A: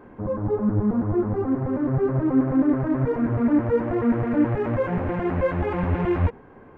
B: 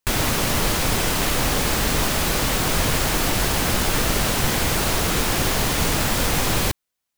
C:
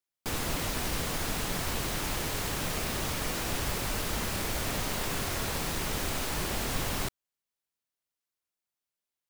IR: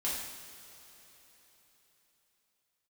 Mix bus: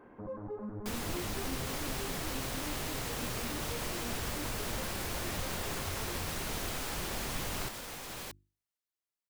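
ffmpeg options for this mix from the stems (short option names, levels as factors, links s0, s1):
-filter_complex "[0:a]asubboost=boost=9.5:cutoff=63,acompressor=threshold=0.0251:ratio=2,volume=0.447[s0];[1:a]bandreject=f=50:t=h:w=6,bandreject=f=100:t=h:w=6,bandreject=f=150:t=h:w=6,bandreject=f=200:t=h:w=6,bandreject=f=250:t=h:w=6,bandreject=f=300:t=h:w=6,bandreject=f=350:t=h:w=6,adelay=1600,volume=0.126[s1];[2:a]adelay=600,volume=0.501[s2];[s0][s1]amix=inputs=2:normalize=0,lowshelf=f=200:g=-8.5,alimiter=level_in=2.82:limit=0.0631:level=0:latency=1,volume=0.355,volume=1[s3];[s2][s3]amix=inputs=2:normalize=0"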